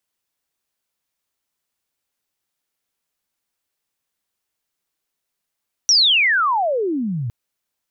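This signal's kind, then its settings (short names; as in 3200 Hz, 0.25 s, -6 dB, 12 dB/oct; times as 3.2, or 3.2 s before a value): chirp logarithmic 5900 Hz -> 110 Hz -10 dBFS -> -21.5 dBFS 1.41 s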